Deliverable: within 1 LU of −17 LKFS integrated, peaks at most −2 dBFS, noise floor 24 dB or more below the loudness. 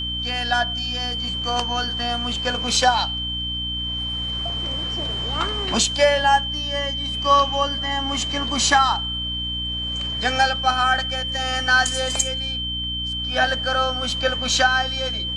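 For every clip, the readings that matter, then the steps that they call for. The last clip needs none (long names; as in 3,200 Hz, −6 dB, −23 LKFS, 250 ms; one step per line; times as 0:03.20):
mains hum 60 Hz; hum harmonics up to 300 Hz; level of the hum −30 dBFS; interfering tone 3,100 Hz; level of the tone −25 dBFS; integrated loudness −21.0 LKFS; sample peak −4.0 dBFS; target loudness −17.0 LKFS
→ hum removal 60 Hz, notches 5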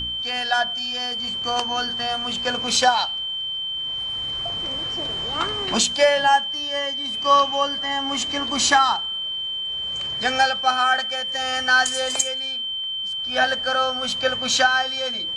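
mains hum none found; interfering tone 3,100 Hz; level of the tone −25 dBFS
→ notch filter 3,100 Hz, Q 30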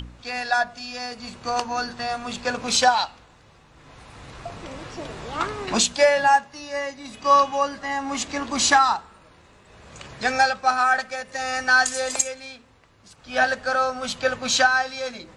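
interfering tone none found; integrated loudness −22.0 LKFS; sample peak −5.0 dBFS; target loudness −17.0 LKFS
→ level +5 dB
brickwall limiter −2 dBFS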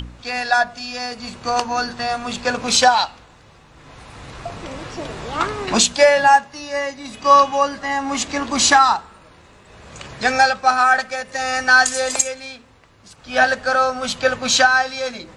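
integrated loudness −17.5 LKFS; sample peak −2.0 dBFS; background noise floor −48 dBFS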